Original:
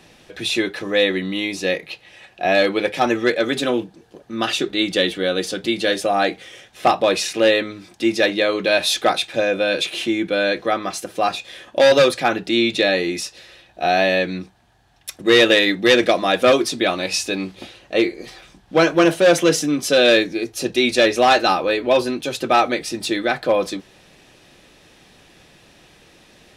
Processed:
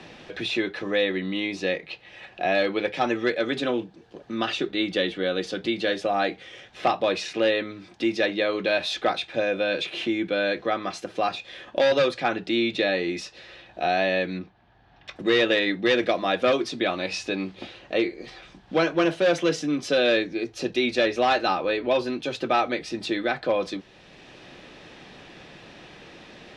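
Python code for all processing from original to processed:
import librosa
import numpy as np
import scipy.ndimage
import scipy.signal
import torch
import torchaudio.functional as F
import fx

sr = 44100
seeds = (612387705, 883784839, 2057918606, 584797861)

y = fx.chain(x, sr, fx.air_absorb(metres=180.0),
    fx.doubler(ms=19.0, db=-12.0), at=(14.39, 15.16))
y = scipy.signal.sosfilt(scipy.signal.butter(2, 4400.0, 'lowpass', fs=sr, output='sos'), y)
y = fx.band_squash(y, sr, depth_pct=40)
y = y * librosa.db_to_amplitude(-6.0)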